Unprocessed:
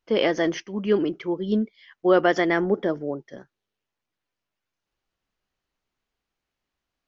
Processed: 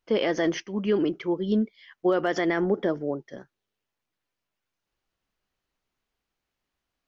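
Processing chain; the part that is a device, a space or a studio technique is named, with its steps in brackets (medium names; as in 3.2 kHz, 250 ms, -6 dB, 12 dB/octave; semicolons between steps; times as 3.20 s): clipper into limiter (hard clipper -7.5 dBFS, distortion -43 dB; peak limiter -14.5 dBFS, peak gain reduction 7 dB)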